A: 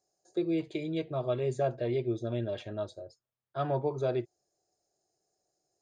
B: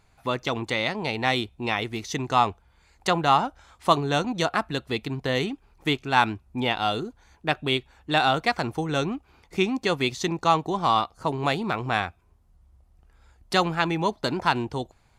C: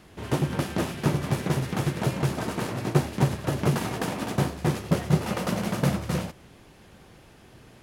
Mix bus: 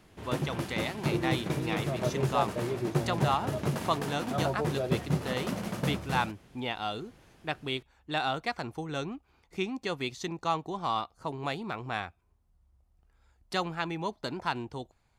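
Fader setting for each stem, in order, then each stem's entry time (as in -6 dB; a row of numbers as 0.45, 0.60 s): -2.5, -9.0, -7.0 dB; 0.75, 0.00, 0.00 s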